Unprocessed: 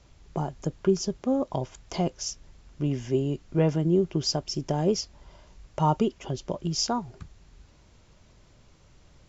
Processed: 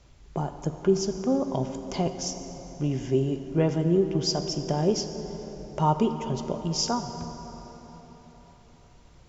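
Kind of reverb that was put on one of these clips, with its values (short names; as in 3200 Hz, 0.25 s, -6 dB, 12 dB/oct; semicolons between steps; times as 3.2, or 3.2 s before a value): plate-style reverb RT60 4.5 s, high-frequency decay 0.55×, DRR 7 dB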